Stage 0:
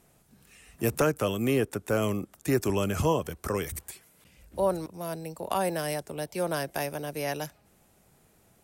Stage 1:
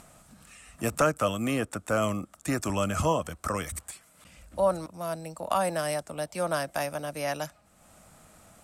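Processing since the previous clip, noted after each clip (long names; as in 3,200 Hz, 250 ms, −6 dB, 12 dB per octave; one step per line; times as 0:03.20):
thirty-one-band graphic EQ 125 Hz −5 dB, 400 Hz −12 dB, 630 Hz +5 dB, 1,250 Hz +8 dB, 8,000 Hz +6 dB
upward compression, threshold −45 dBFS
low-pass filter 11,000 Hz 12 dB per octave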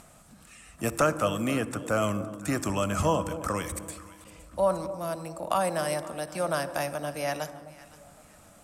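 delay that swaps between a low-pass and a high-pass 257 ms, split 860 Hz, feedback 55%, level −13 dB
on a send at −14 dB: convolution reverb RT60 1.4 s, pre-delay 48 ms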